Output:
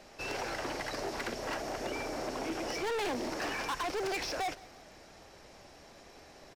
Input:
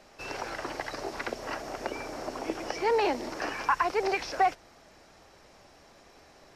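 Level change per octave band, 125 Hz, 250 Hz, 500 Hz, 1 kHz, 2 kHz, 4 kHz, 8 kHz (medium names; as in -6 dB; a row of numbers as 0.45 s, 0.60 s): +1.0 dB, -1.5 dB, -5.0 dB, -7.5 dB, -3.5 dB, +0.5 dB, +2.0 dB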